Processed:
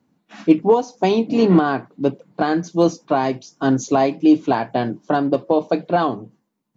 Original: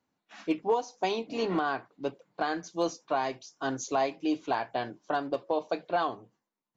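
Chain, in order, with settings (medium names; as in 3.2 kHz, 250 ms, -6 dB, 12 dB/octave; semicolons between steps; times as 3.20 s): peaking EQ 180 Hz +14.5 dB 2.3 oct; trim +6.5 dB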